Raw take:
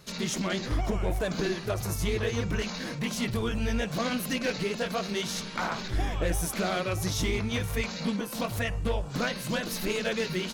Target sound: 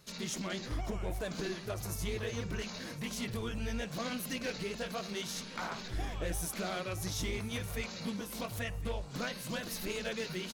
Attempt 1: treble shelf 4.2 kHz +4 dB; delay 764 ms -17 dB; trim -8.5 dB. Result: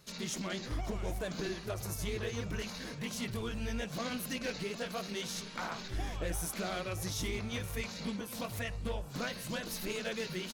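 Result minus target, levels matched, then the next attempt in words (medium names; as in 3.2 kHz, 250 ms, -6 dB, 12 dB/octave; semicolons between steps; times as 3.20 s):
echo 297 ms early
treble shelf 4.2 kHz +4 dB; delay 1061 ms -17 dB; trim -8.5 dB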